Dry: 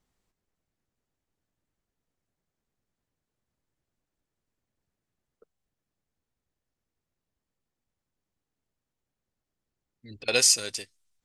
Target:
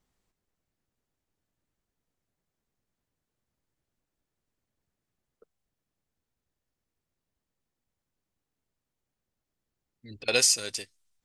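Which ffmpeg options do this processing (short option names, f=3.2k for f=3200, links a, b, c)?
-af "alimiter=limit=-9dB:level=0:latency=1:release=238"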